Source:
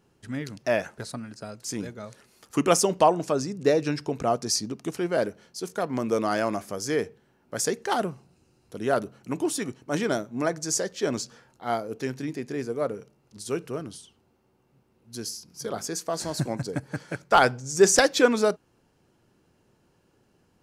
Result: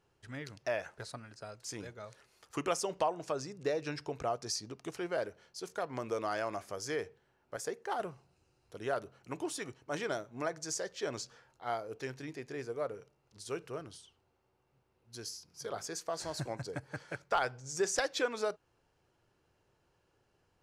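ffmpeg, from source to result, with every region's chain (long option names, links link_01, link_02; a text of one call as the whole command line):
ffmpeg -i in.wav -filter_complex "[0:a]asettb=1/sr,asplit=3[link_01][link_02][link_03];[link_01]atrim=end=7.564[link_04];[link_02]atrim=start=7.56:end=8,asetpts=PTS-STARTPTS,afade=type=in:duration=0.004:curve=qsin,afade=type=out:start_time=0.436:duration=0.004:curve=qsin,highpass=frequency=190:poles=1,equalizer=frequency=4500:width_type=o:width=2.9:gain=-8.5[link_05];[link_03]atrim=start=7.996[link_06];[link_04][link_05]acrossfade=duration=0.004:curve1=hsin:curve2=qsin[link_07];[link_07][link_06]acrossfade=duration=0.004:curve1=qsin:curve2=hsin,equalizer=frequency=220:width_type=o:width=1.2:gain=-12,acompressor=threshold=-27dB:ratio=2,highshelf=frequency=8600:gain=-10.5,volume=-5dB" out.wav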